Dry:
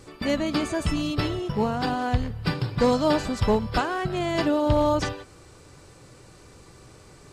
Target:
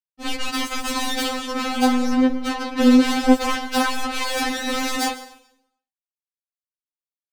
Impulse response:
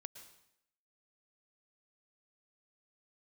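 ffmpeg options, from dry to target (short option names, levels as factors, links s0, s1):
-filter_complex "[0:a]asettb=1/sr,asplit=3[s0][s1][s2];[s0]atrim=end=1.944[s3];[s1]atrim=start=1.94:end=3.28,asetpts=PTS-STARTPTS,afade=t=in:d=0.004:c=qsin,afade=t=out:st=1.336:d=0.004:c=qsin,bass=f=250:g=5,treble=f=4000:g=-9[s4];[s2]atrim=start=3.276[s5];[s3][s4]acrossfade=d=0.004:c1=hsin:c2=qsin[s6];[s6][s5]acrossfade=d=0.004:c1=qsin:c2=hsin,asplit=2[s7][s8];[s8]alimiter=limit=0.141:level=0:latency=1:release=20,volume=0.794[s9];[s7][s9]amix=inputs=2:normalize=0,dynaudnorm=f=380:g=3:m=2.37,aeval=exprs='sgn(val(0))*max(abs(val(0))-0.0224,0)':c=same,acrusher=bits=2:mix=0:aa=0.5,asoftclip=type=tanh:threshold=0.316,asplit=2[s10][s11];[1:a]atrim=start_sample=2205[s12];[s11][s12]afir=irnorm=-1:irlink=0,volume=2[s13];[s10][s13]amix=inputs=2:normalize=0,afftfilt=real='re*3.46*eq(mod(b,12),0)':imag='im*3.46*eq(mod(b,12),0)':win_size=2048:overlap=0.75,volume=0.631"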